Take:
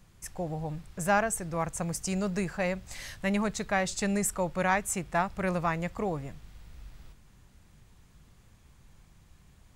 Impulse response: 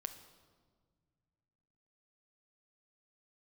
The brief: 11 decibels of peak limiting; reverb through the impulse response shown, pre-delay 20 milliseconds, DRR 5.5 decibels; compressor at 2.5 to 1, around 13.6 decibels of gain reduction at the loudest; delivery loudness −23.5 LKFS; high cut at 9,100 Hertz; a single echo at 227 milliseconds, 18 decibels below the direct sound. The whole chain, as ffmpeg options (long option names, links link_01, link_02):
-filter_complex "[0:a]lowpass=9100,acompressor=threshold=-42dB:ratio=2.5,alimiter=level_in=13.5dB:limit=-24dB:level=0:latency=1,volume=-13.5dB,aecho=1:1:227:0.126,asplit=2[link_01][link_02];[1:a]atrim=start_sample=2205,adelay=20[link_03];[link_02][link_03]afir=irnorm=-1:irlink=0,volume=-3dB[link_04];[link_01][link_04]amix=inputs=2:normalize=0,volume=22dB"